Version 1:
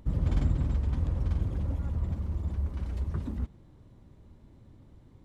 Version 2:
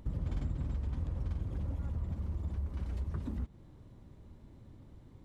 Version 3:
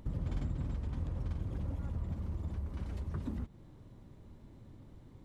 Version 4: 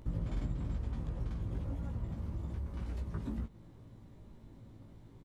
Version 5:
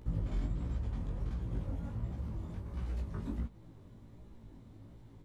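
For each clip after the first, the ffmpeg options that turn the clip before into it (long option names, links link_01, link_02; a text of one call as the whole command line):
ffmpeg -i in.wav -af "acompressor=threshold=-34dB:ratio=3" out.wav
ffmpeg -i in.wav -af "equalizer=frequency=62:width_type=o:width=0.59:gain=-5.5,volume=1dB" out.wav
ffmpeg -i in.wav -filter_complex "[0:a]asplit=2[link_01][link_02];[link_02]adelay=18,volume=-3dB[link_03];[link_01][link_03]amix=inputs=2:normalize=0,volume=-1.5dB" out.wav
ffmpeg -i in.wav -af "flanger=delay=15.5:depth=7.4:speed=1.4,volume=3dB" out.wav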